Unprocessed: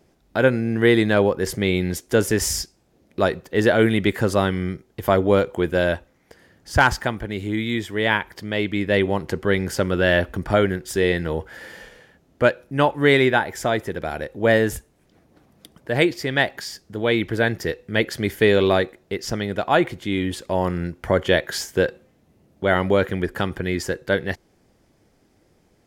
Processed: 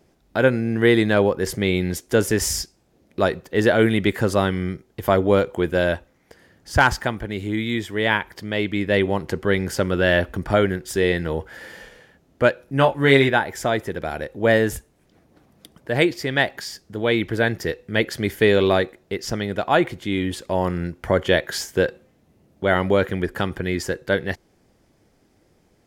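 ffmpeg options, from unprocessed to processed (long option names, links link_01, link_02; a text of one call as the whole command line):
ffmpeg -i in.wav -filter_complex "[0:a]asettb=1/sr,asplit=3[link_01][link_02][link_03];[link_01]atrim=end=12.654[link_04];[link_02]atrim=start=12.65:end=13.29,asetpts=PTS-STARTPTS,afade=type=in:duration=0.004:curve=qsin,afade=type=out:start_time=0.636:duration=0.004:curve=qsin,asplit=2[link_05][link_06];[link_06]adelay=22,volume=-5.5dB[link_07];[link_05][link_07]amix=inputs=2:normalize=0,atrim=end_sample=28224[link_08];[link_03]atrim=start=13.286[link_09];[link_04][link_08]acrossfade=duration=0.004:curve1=hsin:curve2=qsin[link_10];[link_10][link_09]acrossfade=duration=0.004:curve1=qsin:curve2=hsin" out.wav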